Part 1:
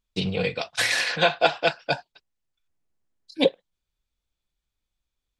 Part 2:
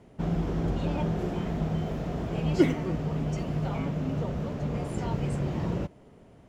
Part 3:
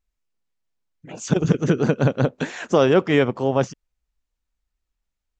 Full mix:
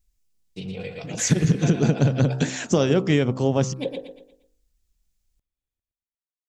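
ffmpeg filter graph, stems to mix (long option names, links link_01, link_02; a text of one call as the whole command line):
ffmpeg -i stem1.wav -i stem2.wav -i stem3.wav -filter_complex "[0:a]equalizer=frequency=4400:width_type=o:width=1.2:gain=-8,bandreject=frequency=51.19:width_type=h:width=4,bandreject=frequency=102.38:width_type=h:width=4,bandreject=frequency=153.57:width_type=h:width=4,bandreject=frequency=204.76:width_type=h:width=4,bandreject=frequency=255.95:width_type=h:width=4,bandreject=frequency=307.14:width_type=h:width=4,bandreject=frequency=358.33:width_type=h:width=4,bandreject=frequency=409.52:width_type=h:width=4,bandreject=frequency=460.71:width_type=h:width=4,bandreject=frequency=511.9:width_type=h:width=4,bandreject=frequency=563.09:width_type=h:width=4,bandreject=frequency=614.28:width_type=h:width=4,bandreject=frequency=665.47:width_type=h:width=4,bandreject=frequency=716.66:width_type=h:width=4,bandreject=frequency=767.85:width_type=h:width=4,bandreject=frequency=819.04:width_type=h:width=4,bandreject=frequency=870.23:width_type=h:width=4,bandreject=frequency=921.42:width_type=h:width=4,bandreject=frequency=972.61:width_type=h:width=4,bandreject=frequency=1023.8:width_type=h:width=4,bandreject=frequency=1074.99:width_type=h:width=4,bandreject=frequency=1126.18:width_type=h:width=4,bandreject=frequency=1177.37:width_type=h:width=4,bandreject=frequency=1228.56:width_type=h:width=4,bandreject=frequency=1279.75:width_type=h:width=4,bandreject=frequency=1330.94:width_type=h:width=4,bandreject=frequency=1382.13:width_type=h:width=4,bandreject=frequency=1433.32:width_type=h:width=4,bandreject=frequency=1484.51:width_type=h:width=4,bandreject=frequency=1535.7:width_type=h:width=4,bandreject=frequency=1586.89:width_type=h:width=4,bandreject=frequency=1638.08:width_type=h:width=4,bandreject=frequency=1689.27:width_type=h:width=4,bandreject=frequency=1740.46:width_type=h:width=4,bandreject=frequency=1791.65:width_type=h:width=4,bandreject=frequency=1842.84:width_type=h:width=4,bandreject=frequency=1894.03:width_type=h:width=4,bandreject=frequency=1945.22:width_type=h:width=4,adelay=400,volume=-6.5dB,asplit=2[link_01][link_02];[link_02]volume=-5dB[link_03];[2:a]bass=frequency=250:gain=8,treble=frequency=4000:gain=10,bandreject=frequency=65.05:width_type=h:width=4,bandreject=frequency=130.1:width_type=h:width=4,bandreject=frequency=195.15:width_type=h:width=4,bandreject=frequency=260.2:width_type=h:width=4,bandreject=frequency=325.25:width_type=h:width=4,bandreject=frequency=390.3:width_type=h:width=4,bandreject=frequency=455.35:width_type=h:width=4,bandreject=frequency=520.4:width_type=h:width=4,bandreject=frequency=585.45:width_type=h:width=4,bandreject=frequency=650.5:width_type=h:width=4,bandreject=frequency=715.55:width_type=h:width=4,bandreject=frequency=780.6:width_type=h:width=4,bandreject=frequency=845.65:width_type=h:width=4,bandreject=frequency=910.7:width_type=h:width=4,bandreject=frequency=975.75:width_type=h:width=4,bandreject=frequency=1040.8:width_type=h:width=4,bandreject=frequency=1105.85:width_type=h:width=4,bandreject=frequency=1170.9:width_type=h:width=4,bandreject=frequency=1235.95:width_type=h:width=4,bandreject=frequency=1301:width_type=h:width=4,bandreject=frequency=1366.05:width_type=h:width=4,volume=1.5dB[link_04];[link_03]aecho=0:1:117|234|351|468|585:1|0.38|0.144|0.0549|0.0209[link_05];[link_01][link_04][link_05]amix=inputs=3:normalize=0,equalizer=frequency=1100:width=0.93:gain=-5,acompressor=threshold=-15dB:ratio=6" out.wav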